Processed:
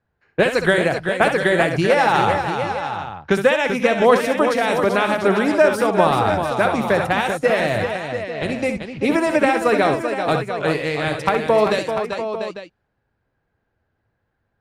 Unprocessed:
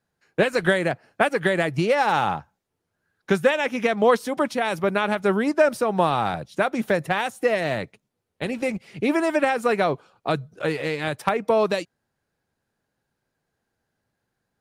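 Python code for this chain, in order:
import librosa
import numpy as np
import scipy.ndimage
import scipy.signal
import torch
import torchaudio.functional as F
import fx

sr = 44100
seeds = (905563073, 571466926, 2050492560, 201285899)

y = fx.low_shelf_res(x, sr, hz=120.0, db=6.0, q=1.5)
y = fx.echo_multitap(y, sr, ms=(65, 388, 693, 847), db=(-8.5, -7.5, -9.5, -12.5))
y = fx.env_lowpass(y, sr, base_hz=2400.0, full_db=-20.0)
y = y * librosa.db_to_amplitude(3.5)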